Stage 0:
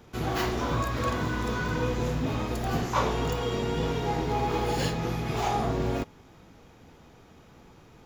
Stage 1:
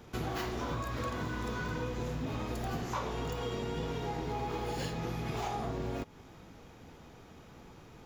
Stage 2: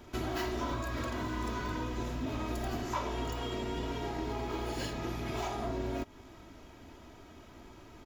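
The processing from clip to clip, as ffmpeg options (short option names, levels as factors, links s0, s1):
-af "acompressor=threshold=0.0224:ratio=6"
-af "aecho=1:1:3.1:0.57"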